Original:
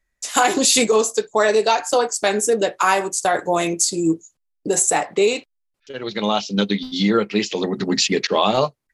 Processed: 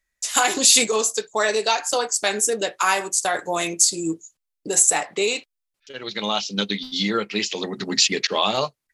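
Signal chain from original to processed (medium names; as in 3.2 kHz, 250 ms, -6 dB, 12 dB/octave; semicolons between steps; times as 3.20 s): tilt shelf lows -5 dB, about 1.3 kHz; trim -2.5 dB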